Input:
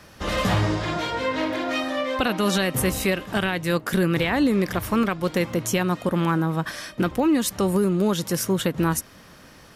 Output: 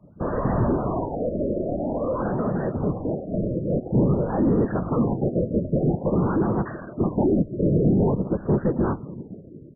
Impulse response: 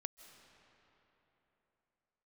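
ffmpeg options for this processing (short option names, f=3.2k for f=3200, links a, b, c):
-filter_complex "[0:a]asettb=1/sr,asplit=3[a][b][c];[a]atrim=end=2.284[d];[b]atrim=start=2.28:end=3.3,asetpts=PTS-STARTPTS,afade=t=in:d=0.004:c=qsin,afade=t=out:st=1.016:d=0.004:c=qsin,acompressor=threshold=-24dB:ratio=6[e];[c]atrim=start=3.296[f];[d][e]acrossfade=d=0.004:c1=hsin:c2=qsin[g];[g][f]acrossfade=d=0.004:c1=qsin:c2=hsin,asplit=2[h][i];[1:a]atrim=start_sample=2205,lowshelf=f=350:g=3,adelay=16[j];[i][j]afir=irnorm=-1:irlink=0,volume=-9dB[k];[h][k]amix=inputs=2:normalize=0,afftdn=nr=23:nf=-39,afftfilt=real='hypot(re,im)*cos(2*PI*random(0))':imag='hypot(re,im)*sin(2*PI*random(1))':win_size=512:overlap=0.75,asplit=2[l][m];[m]highpass=f=720:p=1,volume=26dB,asoftclip=type=tanh:threshold=-13.5dB[n];[l][n]amix=inputs=2:normalize=0,lowpass=f=2k:p=1,volume=-6dB,firequalizer=gain_entry='entry(130,0);entry(280,-6);entry(1900,-24);entry(2700,-22);entry(4300,-6);entry(8600,-2)':delay=0.05:min_phase=1,afftfilt=real='re*lt(b*sr/1024,640*pow(2000/640,0.5+0.5*sin(2*PI*0.49*pts/sr)))':imag='im*lt(b*sr/1024,640*pow(2000/640,0.5+0.5*sin(2*PI*0.49*pts/sr)))':win_size=1024:overlap=0.75,volume=7.5dB"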